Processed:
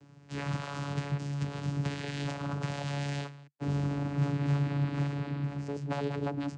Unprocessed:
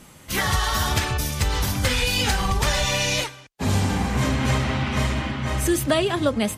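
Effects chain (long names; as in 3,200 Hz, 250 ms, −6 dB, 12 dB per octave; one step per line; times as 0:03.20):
wavefolder on the positive side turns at −20.5 dBFS
0:05.44–0:05.90: amplitude modulation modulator 130 Hz, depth 70%
channel vocoder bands 8, saw 142 Hz
level −6 dB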